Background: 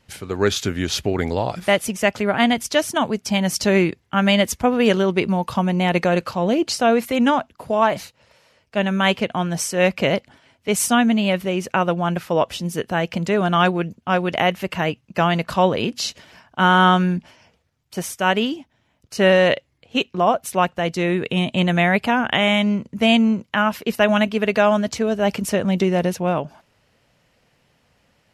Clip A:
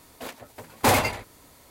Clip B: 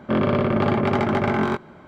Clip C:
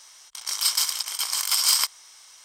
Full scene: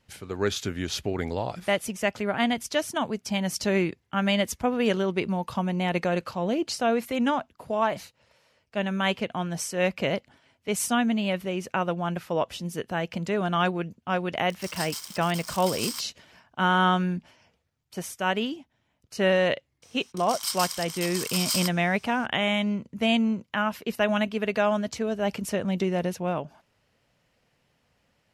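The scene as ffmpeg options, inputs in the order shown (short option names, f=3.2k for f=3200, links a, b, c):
-filter_complex "[3:a]asplit=2[a][b];[0:a]volume=-7.5dB[c];[a]acrusher=bits=4:mix=0:aa=0.5,atrim=end=2.44,asetpts=PTS-STARTPTS,volume=-13dB,afade=t=in:d=0.004:c=hsin,afade=t=out:st=2.436:d=0.004:c=hsin,adelay=14150[d];[b]atrim=end=2.44,asetpts=PTS-STARTPTS,volume=-7.5dB,afade=t=in:d=0.004:c=hsin,afade=t=out:st=2.436:d=0.004:c=hsin,adelay=19820[e];[c][d][e]amix=inputs=3:normalize=0"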